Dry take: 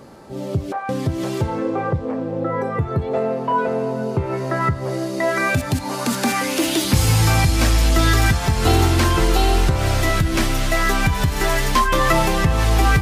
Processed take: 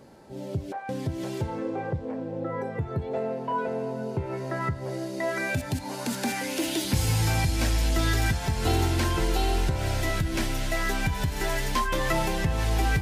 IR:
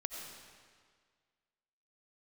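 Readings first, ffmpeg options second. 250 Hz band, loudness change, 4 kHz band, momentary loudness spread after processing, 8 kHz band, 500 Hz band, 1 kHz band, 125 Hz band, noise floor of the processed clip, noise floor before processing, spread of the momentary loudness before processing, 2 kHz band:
−8.5 dB, −9.0 dB, −8.5 dB, 8 LU, −8.5 dB, −8.5 dB, −10.0 dB, −8.5 dB, −37 dBFS, −28 dBFS, 8 LU, −8.5 dB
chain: -af "bandreject=frequency=1200:width=5.8,volume=-8.5dB"

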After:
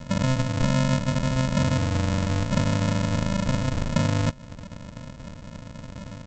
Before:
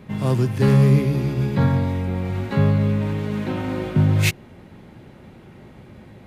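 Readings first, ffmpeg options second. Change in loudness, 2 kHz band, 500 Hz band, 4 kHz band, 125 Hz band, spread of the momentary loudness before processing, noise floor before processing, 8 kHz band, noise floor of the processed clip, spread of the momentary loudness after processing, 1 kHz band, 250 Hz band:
−4.5 dB, −1.5 dB, −4.5 dB, +1.5 dB, −5.5 dB, 10 LU, −45 dBFS, +1.5 dB, −43 dBFS, 17 LU, +0.5 dB, −3.5 dB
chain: -af "aresample=16000,acrusher=samples=41:mix=1:aa=0.000001,aresample=44100,acompressor=threshold=-26dB:ratio=5,volume=5dB"

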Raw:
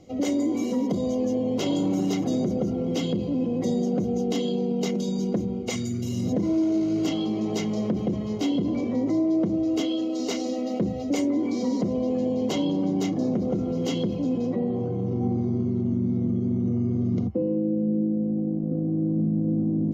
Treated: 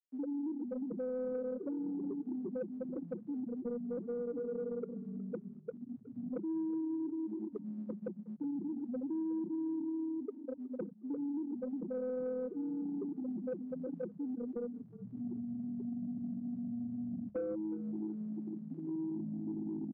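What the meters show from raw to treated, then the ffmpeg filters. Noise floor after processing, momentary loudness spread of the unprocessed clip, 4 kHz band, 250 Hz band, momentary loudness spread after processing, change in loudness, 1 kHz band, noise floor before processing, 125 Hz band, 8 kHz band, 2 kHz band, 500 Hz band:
−53 dBFS, 3 LU, below −40 dB, −14.0 dB, 6 LU, −14.0 dB, −20.5 dB, −29 dBFS, −22.0 dB, can't be measured, below −20 dB, −12.0 dB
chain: -filter_complex "[0:a]afftfilt=real='re*gte(hypot(re,im),0.355)':imag='im*gte(hypot(re,im),0.355)':win_size=1024:overlap=0.75,highpass=630,acompressor=threshold=-44dB:ratio=2.5,asoftclip=type=tanh:threshold=-37dB,asplit=4[link_01][link_02][link_03][link_04];[link_02]adelay=365,afreqshift=-36,volume=-18.5dB[link_05];[link_03]adelay=730,afreqshift=-72,volume=-27.6dB[link_06];[link_04]adelay=1095,afreqshift=-108,volume=-36.7dB[link_07];[link_01][link_05][link_06][link_07]amix=inputs=4:normalize=0,volume=7.5dB"

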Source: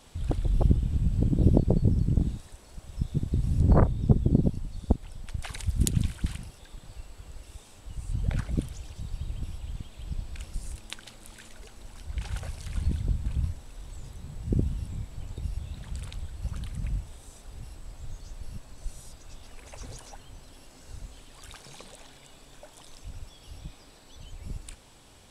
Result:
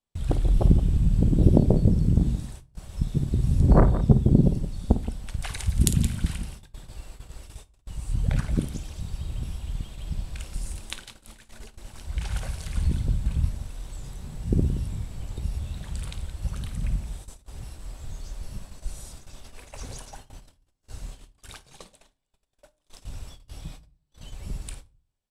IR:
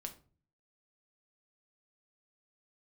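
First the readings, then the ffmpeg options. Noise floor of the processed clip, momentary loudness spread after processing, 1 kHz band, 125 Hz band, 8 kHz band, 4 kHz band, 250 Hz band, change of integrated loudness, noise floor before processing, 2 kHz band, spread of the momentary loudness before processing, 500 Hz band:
−71 dBFS, 24 LU, +4.0 dB, +3.5 dB, +5.0 dB, +3.5 dB, +4.5 dB, +4.0 dB, −53 dBFS, +3.5 dB, 23 LU, +4.0 dB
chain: -filter_complex "[0:a]aecho=1:1:53|172:0.237|0.237,agate=range=-39dB:threshold=-44dB:ratio=16:detection=peak,asplit=2[link_01][link_02];[1:a]atrim=start_sample=2205,highshelf=frequency=7200:gain=7.5[link_03];[link_02][link_03]afir=irnorm=-1:irlink=0,volume=-2.5dB[link_04];[link_01][link_04]amix=inputs=2:normalize=0"

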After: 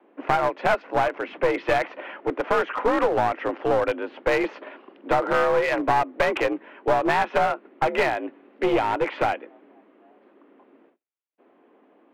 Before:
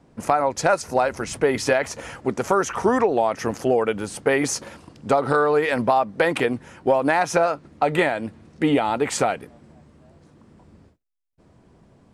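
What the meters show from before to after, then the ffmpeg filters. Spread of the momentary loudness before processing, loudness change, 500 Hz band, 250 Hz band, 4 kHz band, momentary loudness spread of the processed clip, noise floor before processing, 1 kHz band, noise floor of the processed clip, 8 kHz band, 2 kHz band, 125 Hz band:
8 LU, −2.0 dB, −2.5 dB, −4.5 dB, −3.0 dB, 9 LU, −56 dBFS, −0.5 dB, −59 dBFS, below −15 dB, −1.0 dB, −6.0 dB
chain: -af "highpass=frequency=220:width_type=q:width=0.5412,highpass=frequency=220:width_type=q:width=1.307,lowpass=frequency=3000:width_type=q:width=0.5176,lowpass=frequency=3000:width_type=q:width=0.7071,lowpass=frequency=3000:width_type=q:width=1.932,afreqshift=59,aeval=exprs='clip(val(0),-1,0.0891)':channel_layout=same"

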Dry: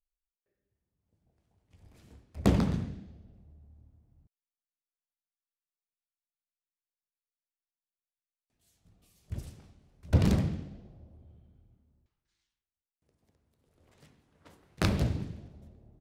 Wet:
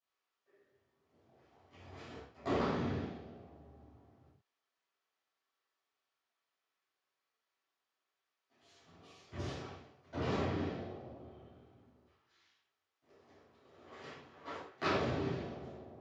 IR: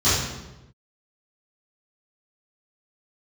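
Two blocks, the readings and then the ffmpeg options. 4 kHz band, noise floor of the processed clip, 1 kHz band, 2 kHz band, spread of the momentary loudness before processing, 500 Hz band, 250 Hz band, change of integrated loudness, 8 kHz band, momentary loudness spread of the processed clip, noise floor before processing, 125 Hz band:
−3.0 dB, below −85 dBFS, +2.5 dB, 0.0 dB, 21 LU, +0.5 dB, −7.5 dB, −9.0 dB, −11.0 dB, 21 LU, below −85 dBFS, −11.5 dB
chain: -filter_complex "[0:a]areverse,acompressor=threshold=-39dB:ratio=5,areverse,highpass=500,lowpass=2900[link_01];[1:a]atrim=start_sample=2205,atrim=end_sample=6615[link_02];[link_01][link_02]afir=irnorm=-1:irlink=0,volume=-2dB"

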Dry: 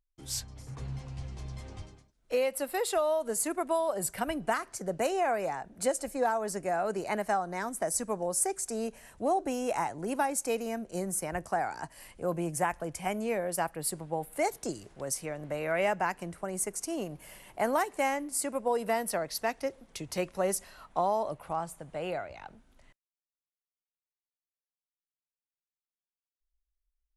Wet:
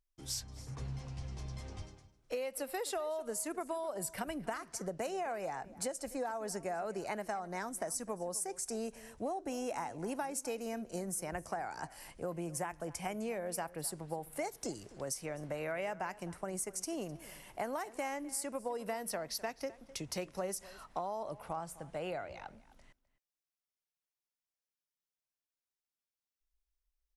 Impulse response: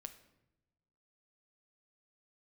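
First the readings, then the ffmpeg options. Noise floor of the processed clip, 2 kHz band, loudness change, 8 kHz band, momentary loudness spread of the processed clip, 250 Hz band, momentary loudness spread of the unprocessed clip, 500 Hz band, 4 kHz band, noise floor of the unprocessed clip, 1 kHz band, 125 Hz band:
below −85 dBFS, −8.0 dB, −7.5 dB, −6.0 dB, 6 LU, −6.0 dB, 11 LU, −8.0 dB, −4.0 dB, below −85 dBFS, −9.0 dB, −4.5 dB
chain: -filter_complex "[0:a]equalizer=frequency=5500:width=3.8:gain=4.5,acompressor=threshold=-33dB:ratio=6,asplit=2[link_01][link_02];[link_02]adelay=256.6,volume=-18dB,highshelf=frequency=4000:gain=-5.77[link_03];[link_01][link_03]amix=inputs=2:normalize=0,volume=-2dB"

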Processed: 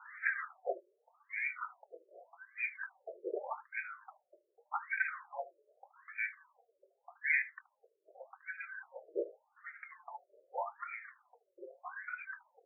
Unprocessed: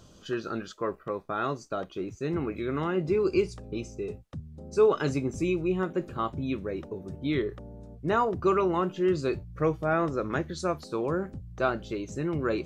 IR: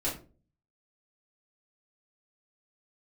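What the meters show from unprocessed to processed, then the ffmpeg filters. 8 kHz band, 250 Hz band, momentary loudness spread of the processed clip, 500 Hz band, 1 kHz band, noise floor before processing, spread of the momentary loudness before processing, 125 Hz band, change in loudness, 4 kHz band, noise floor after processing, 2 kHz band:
below −30 dB, −29.0 dB, 20 LU, −19.0 dB, −13.0 dB, −53 dBFS, 12 LU, below −40 dB, −10.5 dB, below −40 dB, −81 dBFS, +1.5 dB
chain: -filter_complex "[0:a]afftfilt=real='real(if(lt(b,272),68*(eq(floor(b/68),0)*3+eq(floor(b/68),1)*2+eq(floor(b/68),2)*1+eq(floor(b/68),3)*0)+mod(b,68),b),0)':imag='imag(if(lt(b,272),68*(eq(floor(b/68),0)*3+eq(floor(b/68),1)*2+eq(floor(b/68),2)*1+eq(floor(b/68),3)*0)+mod(b,68),b),0)':win_size=2048:overlap=0.75,adynamicequalizer=threshold=0.00224:dfrequency=750:dqfactor=1.1:tfrequency=750:tqfactor=1.1:attack=5:release=100:ratio=0.375:range=2:mode=boostabove:tftype=bell,asplit=2[link_01][link_02];[link_02]alimiter=limit=-21.5dB:level=0:latency=1:release=394,volume=1dB[link_03];[link_01][link_03]amix=inputs=2:normalize=0,flanger=delay=2.2:depth=4.1:regen=-1:speed=0.64:shape=sinusoidal,highpass=frequency=250:width_type=q:width=0.5412,highpass=frequency=250:width_type=q:width=1.307,lowpass=frequency=2500:width_type=q:width=0.5176,lowpass=frequency=2500:width_type=q:width=0.7071,lowpass=frequency=2500:width_type=q:width=1.932,afreqshift=53,aecho=1:1:23|75:0.211|0.15,afftfilt=real='re*between(b*sr/1024,440*pow(1800/440,0.5+0.5*sin(2*PI*0.84*pts/sr))/1.41,440*pow(1800/440,0.5+0.5*sin(2*PI*0.84*pts/sr))*1.41)':imag='im*between(b*sr/1024,440*pow(1800/440,0.5+0.5*sin(2*PI*0.84*pts/sr))/1.41,440*pow(1800/440,0.5+0.5*sin(2*PI*0.84*pts/sr))*1.41)':win_size=1024:overlap=0.75,volume=14.5dB"

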